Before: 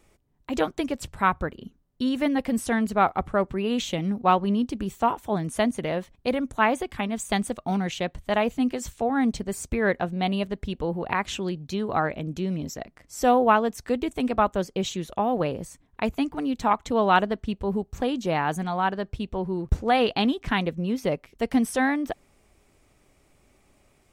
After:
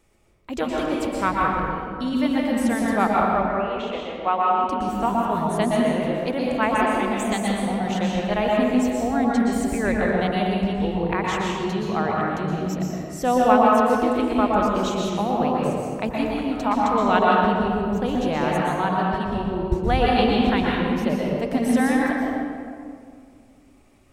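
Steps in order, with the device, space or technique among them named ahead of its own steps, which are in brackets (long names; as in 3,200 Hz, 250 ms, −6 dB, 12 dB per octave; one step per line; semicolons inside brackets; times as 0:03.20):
0:03.25–0:04.64: three-way crossover with the lows and the highs turned down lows −24 dB, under 410 Hz, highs −22 dB, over 3,100 Hz
stairwell (convolution reverb RT60 2.2 s, pre-delay 113 ms, DRR −4 dB)
level −2 dB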